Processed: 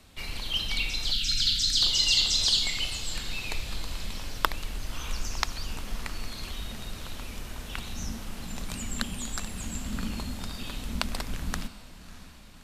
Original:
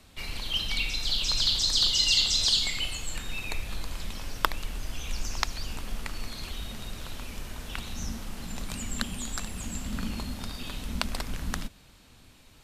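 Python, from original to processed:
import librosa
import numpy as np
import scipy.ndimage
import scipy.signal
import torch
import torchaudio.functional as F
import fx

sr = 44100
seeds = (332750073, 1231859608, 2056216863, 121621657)

y = fx.echo_diffused(x, sr, ms=617, feedback_pct=54, wet_db=-16.0)
y = fx.spec_erase(y, sr, start_s=1.12, length_s=0.7, low_hz=320.0, high_hz=1300.0)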